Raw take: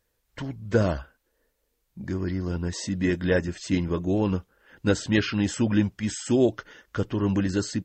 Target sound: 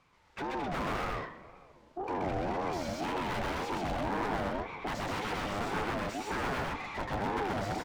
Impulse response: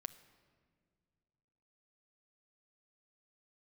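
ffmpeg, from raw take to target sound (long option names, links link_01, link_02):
-filter_complex "[0:a]lowpass=6900,aeval=exprs='(mod(7.08*val(0)+1,2)-1)/7.08':channel_layout=same,aecho=1:1:128.3|215.7|256.6:1|0.447|0.398,asplit=2[link_01][link_02];[link_02]highpass=frequency=720:poles=1,volume=34dB,asoftclip=type=tanh:threshold=-16.5dB[link_03];[link_01][link_03]amix=inputs=2:normalize=0,lowpass=frequency=1100:poles=1,volume=-6dB[link_04];[1:a]atrim=start_sample=2205[link_05];[link_04][link_05]afir=irnorm=-1:irlink=0,aeval=exprs='val(0)*sin(2*PI*520*n/s+520*0.25/1.9*sin(2*PI*1.9*n/s))':channel_layout=same,volume=-4.5dB"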